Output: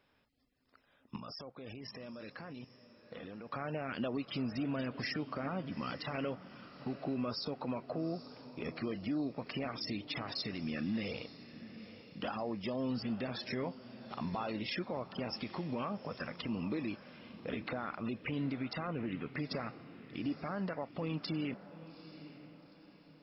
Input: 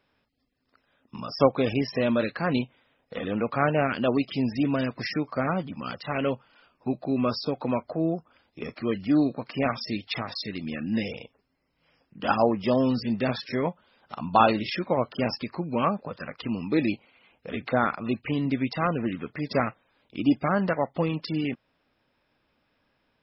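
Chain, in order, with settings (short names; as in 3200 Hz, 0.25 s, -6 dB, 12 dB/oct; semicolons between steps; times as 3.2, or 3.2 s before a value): compressor 3:1, threshold -31 dBFS, peak gain reduction 13.5 dB; limiter -26 dBFS, peak gain reduction 10 dB; 1.16–3.5 level quantiser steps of 15 dB; diffused feedback echo 0.848 s, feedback 42%, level -14 dB; gain -2 dB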